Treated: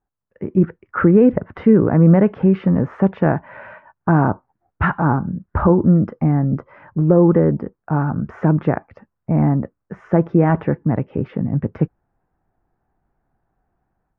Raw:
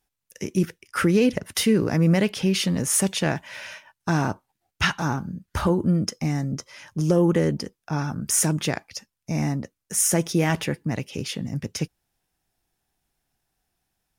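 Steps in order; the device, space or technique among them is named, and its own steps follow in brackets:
action camera in a waterproof case (low-pass filter 1,400 Hz 24 dB per octave; automatic gain control gain up to 9.5 dB; AAC 128 kbit/s 48,000 Hz)

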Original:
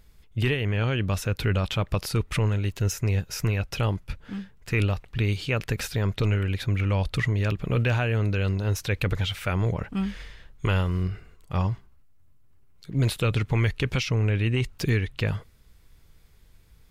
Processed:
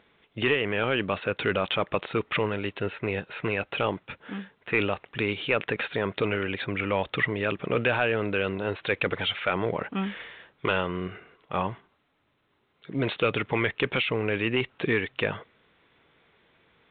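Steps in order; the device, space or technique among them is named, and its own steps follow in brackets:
telephone (band-pass filter 310–3,600 Hz; soft clipping −18.5 dBFS, distortion −18 dB; level +6 dB; A-law companding 64 kbit/s 8,000 Hz)

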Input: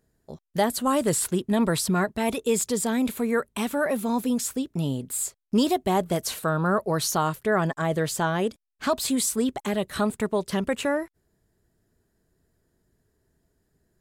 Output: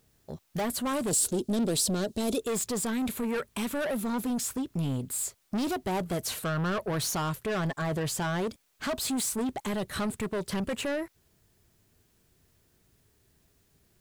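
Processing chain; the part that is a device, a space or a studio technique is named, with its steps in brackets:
open-reel tape (soft clipping −27 dBFS, distortion −8 dB; parametric band 100 Hz +4.5 dB 1.14 octaves; white noise bed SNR 39 dB)
0:01.11–0:02.41: octave-band graphic EQ 125/250/500/1,000/2,000/4,000/8,000 Hz −7/+4/+6/−7/−9/+5/+6 dB

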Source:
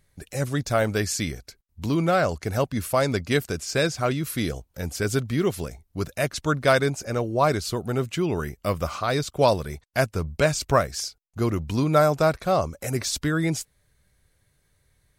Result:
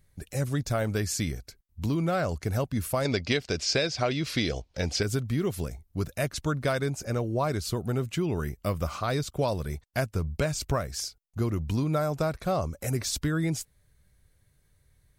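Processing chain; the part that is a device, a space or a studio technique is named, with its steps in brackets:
0:03.05–0:05.03: drawn EQ curve 150 Hz 0 dB, 650 Hz +9 dB, 1,300 Hz +4 dB, 2,200 Hz +11 dB, 5,000 Hz +13 dB, 14,000 Hz −20 dB
ASMR close-microphone chain (low-shelf EQ 220 Hz +7 dB; downward compressor 6 to 1, threshold −19 dBFS, peak gain reduction 10.5 dB; high-shelf EQ 12,000 Hz +5.5 dB)
level −4 dB

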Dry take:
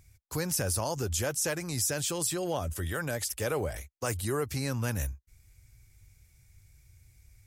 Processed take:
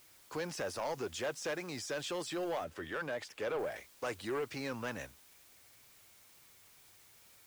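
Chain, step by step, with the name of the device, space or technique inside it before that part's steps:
tape answering machine (band-pass filter 310–3,300 Hz; soft clipping −30.5 dBFS, distortion −12 dB; tape wow and flutter; white noise bed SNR 21 dB)
0:02.64–0:03.59: high-shelf EQ 4,300 Hz −7 dB

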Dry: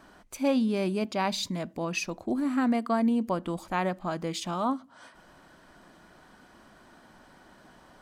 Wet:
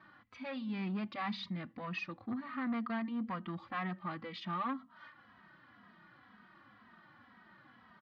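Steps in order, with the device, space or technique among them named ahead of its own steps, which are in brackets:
barber-pole flanger into a guitar amplifier (barber-pole flanger 2.8 ms −2 Hz; soft clipping −28 dBFS, distortion −13 dB; loudspeaker in its box 91–4,100 Hz, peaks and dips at 110 Hz +9 dB, 210 Hz +6 dB, 420 Hz −8 dB, 630 Hz −6 dB, 1,200 Hz +9 dB, 1,900 Hz +9 dB)
high shelf with overshoot 5,600 Hz −6 dB, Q 1.5
level −6 dB

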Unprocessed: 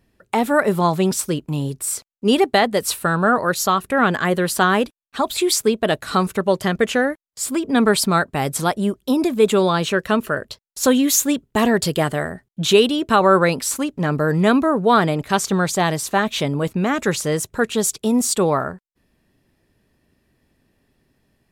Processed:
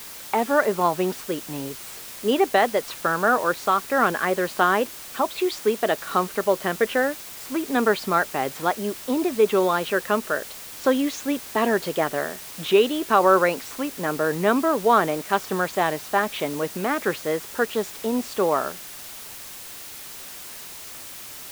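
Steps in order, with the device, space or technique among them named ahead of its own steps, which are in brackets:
wax cylinder (band-pass filter 310–2,500 Hz; tape wow and flutter; white noise bed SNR 15 dB)
level −2 dB

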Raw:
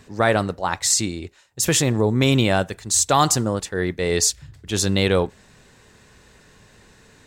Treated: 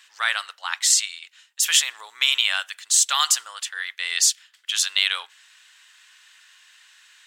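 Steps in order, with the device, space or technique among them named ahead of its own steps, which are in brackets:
headphones lying on a table (high-pass filter 1,300 Hz 24 dB per octave; parametric band 3,100 Hz +9 dB 0.39 octaves)
level +1 dB

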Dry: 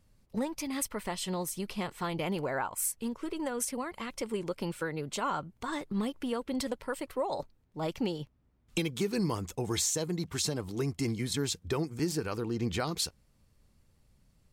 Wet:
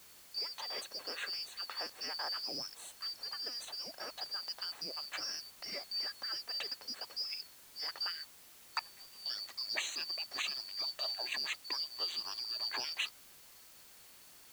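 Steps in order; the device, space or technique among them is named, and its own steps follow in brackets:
0:08.79–0:09.26: guitar amp tone stack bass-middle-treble 10-0-1
split-band scrambled radio (band-splitting scrambler in four parts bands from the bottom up 2341; band-pass filter 400–3,300 Hz; white noise bed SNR 16 dB)

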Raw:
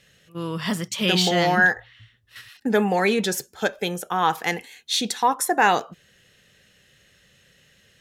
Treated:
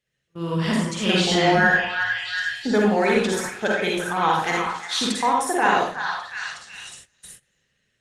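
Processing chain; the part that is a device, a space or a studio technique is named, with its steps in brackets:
0:05.10–0:05.51: low-shelf EQ 170 Hz +5.5 dB
low-pass filter 9,500 Hz 24 dB per octave
echo through a band-pass that steps 364 ms, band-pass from 1,300 Hz, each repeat 0.7 octaves, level −4.5 dB
speakerphone in a meeting room (convolution reverb RT60 0.55 s, pre-delay 44 ms, DRR −2.5 dB; automatic gain control gain up to 7 dB; noise gate −37 dBFS, range −18 dB; level −5 dB; Opus 24 kbit/s 48,000 Hz)

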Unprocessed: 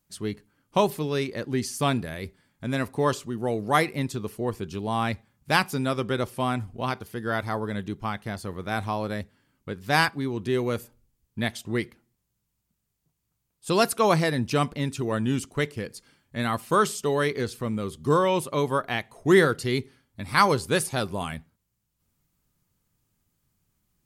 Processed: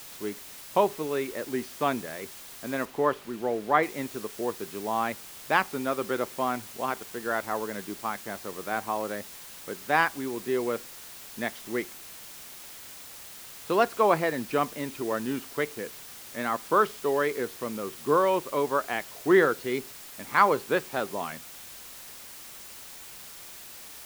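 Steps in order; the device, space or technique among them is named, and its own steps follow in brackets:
wax cylinder (band-pass filter 310–2,100 Hz; tape wow and flutter 27 cents; white noise bed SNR 15 dB)
0:02.85–0:03.83: bass and treble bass +1 dB, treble −8 dB

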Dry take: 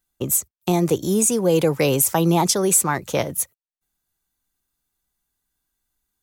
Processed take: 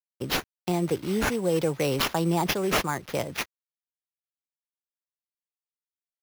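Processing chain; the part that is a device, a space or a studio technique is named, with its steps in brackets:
early 8-bit sampler (sample-rate reduction 8,300 Hz, jitter 0%; bit reduction 8 bits)
level −7 dB

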